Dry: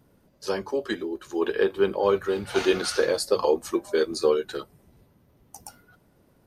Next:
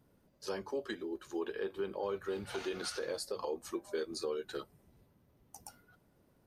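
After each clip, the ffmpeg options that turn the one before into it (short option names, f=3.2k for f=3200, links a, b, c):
-af "alimiter=limit=-19.5dB:level=0:latency=1:release=216,volume=-8dB"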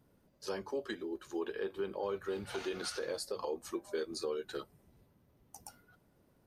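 -af anull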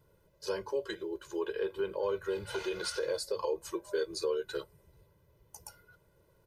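-af "aecho=1:1:2:0.95"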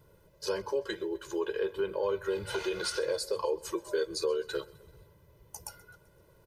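-filter_complex "[0:a]asplit=2[a][b];[b]acompressor=threshold=-41dB:ratio=6,volume=-0.5dB[c];[a][c]amix=inputs=2:normalize=0,aecho=1:1:129|258|387|516:0.0794|0.0437|0.024|0.0132"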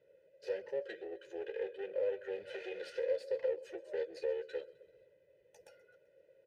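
-filter_complex "[0:a]aeval=exprs='clip(val(0),-1,0.00891)':c=same,asplit=3[a][b][c];[a]bandpass=f=530:t=q:w=8,volume=0dB[d];[b]bandpass=f=1.84k:t=q:w=8,volume=-6dB[e];[c]bandpass=f=2.48k:t=q:w=8,volume=-9dB[f];[d][e][f]amix=inputs=3:normalize=0,volume=5dB"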